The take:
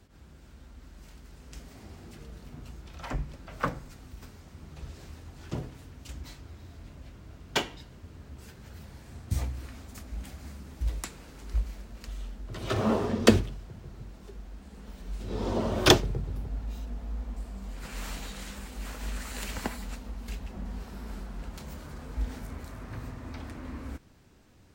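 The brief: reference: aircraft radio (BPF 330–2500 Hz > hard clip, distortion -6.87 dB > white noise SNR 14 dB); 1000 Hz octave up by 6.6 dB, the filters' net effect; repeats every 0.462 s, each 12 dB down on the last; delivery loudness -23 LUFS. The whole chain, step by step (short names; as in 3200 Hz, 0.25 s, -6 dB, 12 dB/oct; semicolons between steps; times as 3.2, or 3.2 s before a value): BPF 330–2500 Hz; bell 1000 Hz +8.5 dB; feedback echo 0.462 s, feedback 25%, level -12 dB; hard clip -19.5 dBFS; white noise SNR 14 dB; gain +14.5 dB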